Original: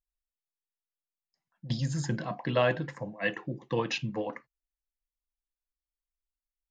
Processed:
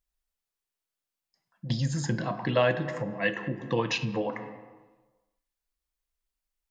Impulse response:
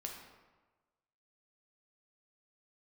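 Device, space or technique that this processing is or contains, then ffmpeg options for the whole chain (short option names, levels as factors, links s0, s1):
ducked reverb: -filter_complex "[0:a]asplit=3[s0][s1][s2];[1:a]atrim=start_sample=2205[s3];[s1][s3]afir=irnorm=-1:irlink=0[s4];[s2]apad=whole_len=295555[s5];[s4][s5]sidechaincompress=threshold=0.00891:ratio=3:attack=36:release=152,volume=1.58[s6];[s0][s6]amix=inputs=2:normalize=0"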